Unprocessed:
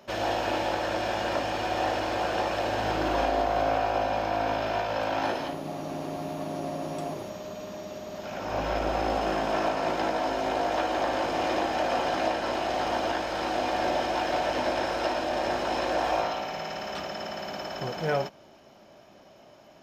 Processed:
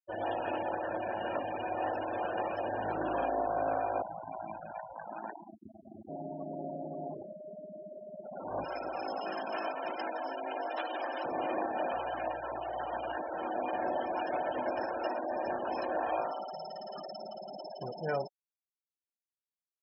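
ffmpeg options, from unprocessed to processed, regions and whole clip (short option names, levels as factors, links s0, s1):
-filter_complex "[0:a]asettb=1/sr,asplit=3[s0][s1][s2];[s0]atrim=end=4.024[s3];[s1]atrim=start=4.02:end=6.09,asetpts=PTS-STARTPTS,afade=t=in:d=0.004:c=qsin,afade=t=out:st=2.066:d=0.004:c=qsin,equalizer=f=490:w=1.9:g=-12.5,acrusher=bits=5:mix=0:aa=0.5,aeval=exprs='val(0)*sin(2*PI*57*n/s)':c=same[s4];[s2]atrim=start=6.086[s5];[s3][s4]acrossfade=d=0.004:c1=hsin:c2=qsin[s6];[s6][s5]acrossfade=d=0.004:c1=qsin:c2=hsin,asettb=1/sr,asplit=3[s7][s8][s9];[s7]atrim=end=8.644[s10];[s8]atrim=start=8.64:end=11.25,asetpts=PTS-STARTPTS,afade=t=in:d=0.004:c=qsin,afade=t=out:st=2.606:d=0.004:c=qsin,highpass=73,tiltshelf=f=1400:g=-5.5,acrusher=bits=9:dc=4:mix=0:aa=0.000001[s11];[s9]atrim=start=11.246[s12];[s10][s11]acrossfade=d=0.004:c1=hsin:c2=qsin[s13];[s13][s12]acrossfade=d=0.004:c1=qsin:c2=hsin,asettb=1/sr,asplit=3[s14][s15][s16];[s14]atrim=end=11.924[s17];[s15]atrim=start=11.92:end=13.17,asetpts=PTS-STARTPTS,afade=t=in:d=0.004:c=qsin,afade=t=out:st=1.246:d=0.004:c=qsin,highpass=f=560:p=1,aeval=exprs='val(0)+0.00891*(sin(2*PI*60*n/s)+sin(2*PI*2*60*n/s)/2+sin(2*PI*3*60*n/s)/3+sin(2*PI*4*60*n/s)/4+sin(2*PI*5*60*n/s)/5)':c=same[s18];[s16]atrim=start=13.166[s19];[s17][s18]acrossfade=d=0.004:c1=hsin:c2=qsin[s20];[s20][s19]acrossfade=d=0.004:c1=qsin:c2=hsin,asettb=1/sr,asplit=3[s21][s22][s23];[s21]atrim=end=16.354[s24];[s22]atrim=start=16.35:end=17.21,asetpts=PTS-STARTPTS,afade=t=in:d=0.004:c=qsin,afade=t=out:st=0.856:d=0.004:c=qsin,lowpass=f=6300:w=0.5412,lowpass=f=6300:w=1.3066,equalizer=f=4800:t=o:w=0.38:g=4.5[s25];[s23]atrim=start=17.206[s26];[s24][s25]acrossfade=d=0.004:c1=hsin:c2=qsin[s27];[s27][s26]acrossfade=d=0.004:c1=qsin:c2=hsin,afftfilt=real='re*gte(hypot(re,im),0.0447)':imag='im*gte(hypot(re,im),0.0447)':win_size=1024:overlap=0.75,highpass=59,lowshelf=f=80:g=-11.5,volume=0.531"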